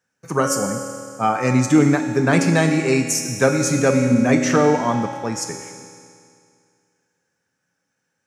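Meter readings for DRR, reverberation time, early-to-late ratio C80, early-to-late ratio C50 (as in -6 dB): 3.0 dB, 2.3 s, 6.0 dB, 4.5 dB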